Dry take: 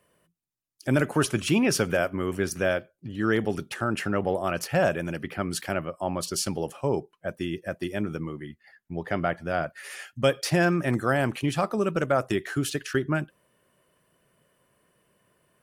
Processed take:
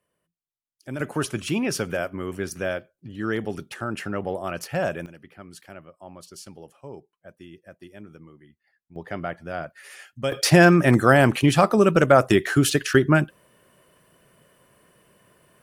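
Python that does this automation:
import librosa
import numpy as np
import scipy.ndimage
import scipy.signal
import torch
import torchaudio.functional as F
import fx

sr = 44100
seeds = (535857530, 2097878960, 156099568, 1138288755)

y = fx.gain(x, sr, db=fx.steps((0.0, -10.0), (1.0, -2.5), (5.06, -14.0), (8.96, -4.0), (10.32, 8.5)))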